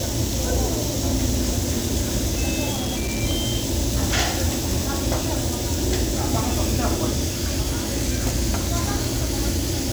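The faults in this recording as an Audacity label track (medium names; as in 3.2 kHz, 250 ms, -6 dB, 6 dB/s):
2.710000	3.230000	clipped -21.5 dBFS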